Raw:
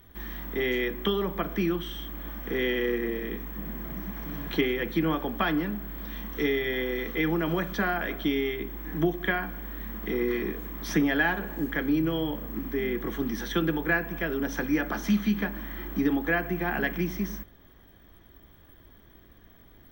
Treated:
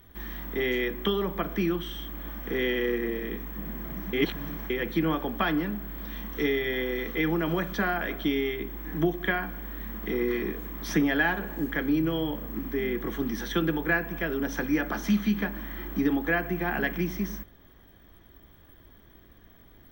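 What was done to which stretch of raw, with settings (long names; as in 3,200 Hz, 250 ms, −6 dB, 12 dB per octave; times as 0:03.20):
0:04.13–0:04.70: reverse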